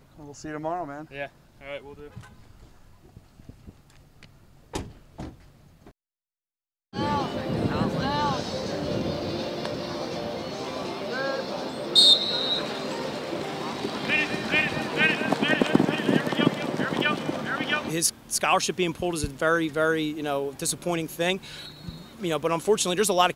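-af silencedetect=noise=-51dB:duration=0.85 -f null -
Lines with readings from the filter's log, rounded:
silence_start: 5.91
silence_end: 6.93 | silence_duration: 1.02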